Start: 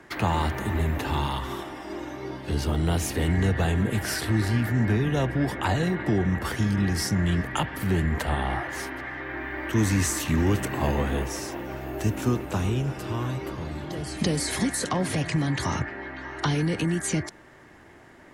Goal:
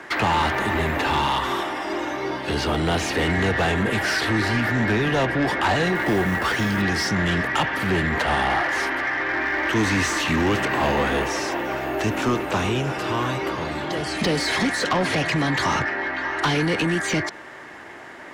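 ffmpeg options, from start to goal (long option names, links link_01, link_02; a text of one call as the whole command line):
ffmpeg -i in.wav -filter_complex "[0:a]acrossover=split=5700[link_01][link_02];[link_02]acompressor=threshold=-49dB:ratio=4:attack=1:release=60[link_03];[link_01][link_03]amix=inputs=2:normalize=0,asplit=2[link_04][link_05];[link_05]highpass=frequency=720:poles=1,volume=20dB,asoftclip=type=tanh:threshold=-12dB[link_06];[link_04][link_06]amix=inputs=2:normalize=0,lowpass=frequency=4100:poles=1,volume=-6dB,asettb=1/sr,asplit=3[link_07][link_08][link_09];[link_07]atrim=end=5.954[link_10];[link_08]atrim=start=5.95:end=6.82,asetpts=PTS-STARTPTS,afade=type=in:duration=0.004:curve=qsin,afade=type=out:start_time=0.866:duration=0.004:curve=qsin,acrusher=bits=6:mode=log:mix=0:aa=0.000001[link_11];[link_09]atrim=start=6.816[link_12];[link_10][link_11]acrossfade=duration=0.004:curve1=hsin:curve2=qsin[link_13];[link_13][link_12]acrossfade=duration=0.004:curve1=qsin:curve2=hsin" out.wav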